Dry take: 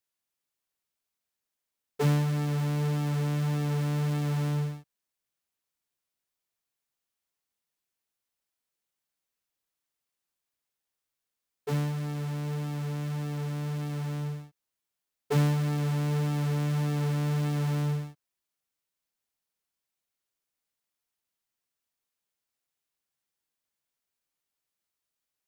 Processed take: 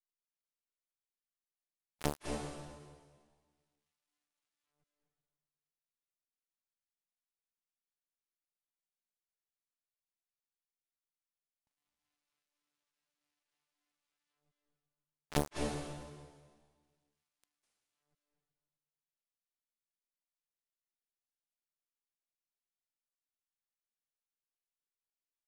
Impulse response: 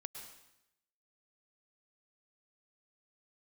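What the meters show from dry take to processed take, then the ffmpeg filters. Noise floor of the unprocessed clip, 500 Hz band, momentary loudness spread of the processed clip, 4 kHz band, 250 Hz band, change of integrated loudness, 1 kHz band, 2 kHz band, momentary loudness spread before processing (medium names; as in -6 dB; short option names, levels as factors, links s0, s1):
under -85 dBFS, -10.0 dB, 19 LU, -9.0 dB, -16.5 dB, -10.0 dB, -9.5 dB, -11.5 dB, 7 LU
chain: -filter_complex "[0:a]aeval=exprs='0.224*(cos(1*acos(clip(val(0)/0.224,-1,1)))-cos(1*PI/2))+0.002*(cos(6*acos(clip(val(0)/0.224,-1,1)))-cos(6*PI/2))+0.0282*(cos(7*acos(clip(val(0)/0.224,-1,1)))-cos(7*PI/2))+0.0562*(cos(8*acos(clip(val(0)/0.224,-1,1)))-cos(8*PI/2))':c=same,aeval=exprs='max(val(0),0)':c=same[s0];[1:a]atrim=start_sample=2205,asetrate=22491,aresample=44100[s1];[s0][s1]afir=irnorm=-1:irlink=0,volume=2.11"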